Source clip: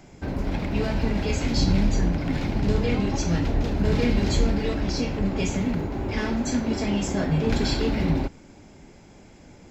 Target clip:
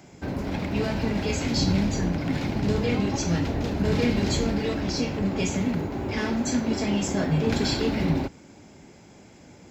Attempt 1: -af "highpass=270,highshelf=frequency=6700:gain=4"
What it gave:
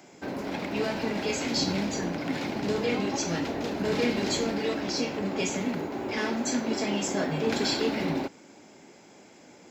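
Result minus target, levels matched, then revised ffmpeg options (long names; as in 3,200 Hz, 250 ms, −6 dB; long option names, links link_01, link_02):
125 Hz band −7.5 dB
-af "highpass=80,highshelf=frequency=6700:gain=4"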